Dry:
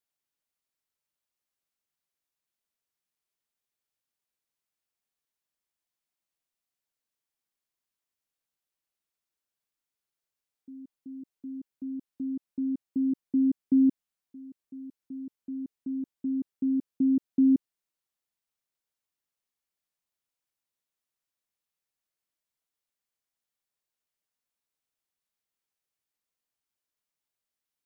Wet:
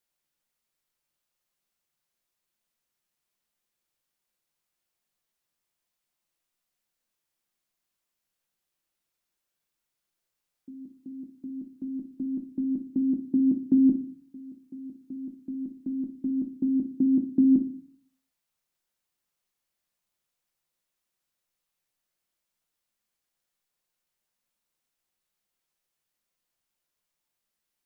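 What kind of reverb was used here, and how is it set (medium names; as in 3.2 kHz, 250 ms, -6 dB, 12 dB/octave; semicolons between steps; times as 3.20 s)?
simulated room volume 260 m³, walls furnished, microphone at 0.9 m; trim +4.5 dB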